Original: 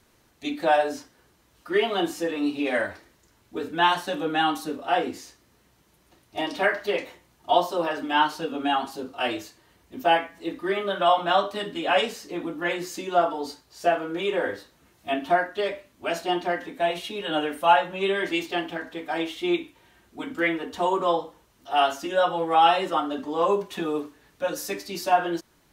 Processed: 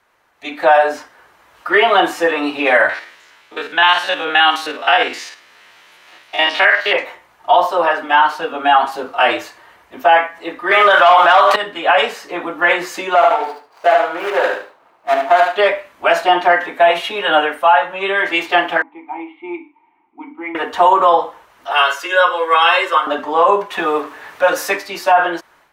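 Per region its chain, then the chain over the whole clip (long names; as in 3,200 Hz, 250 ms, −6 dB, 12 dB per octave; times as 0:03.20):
0:02.89–0:06.93: spectrum averaged block by block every 50 ms + meter weighting curve D
0:10.71–0:11.56: meter weighting curve A + leveller curve on the samples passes 2 + envelope flattener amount 70%
0:13.15–0:15.56: running median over 25 samples + high-pass filter 600 Hz 6 dB per octave + repeating echo 74 ms, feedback 22%, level −5.5 dB
0:18.82–0:20.55: formant filter u + high-frequency loss of the air 500 metres
0:21.72–0:23.07: high-pass filter 350 Hz 24 dB per octave + parametric band 690 Hz −14.5 dB 1 octave + comb filter 1.9 ms, depth 60%
0:23.78–0:24.77: mu-law and A-law mismatch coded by mu + high-pass filter 110 Hz 6 dB per octave
whole clip: three-way crossover with the lows and the highs turned down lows −20 dB, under 590 Hz, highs −15 dB, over 2,400 Hz; automatic gain control gain up to 13 dB; boost into a limiter +9 dB; level −1 dB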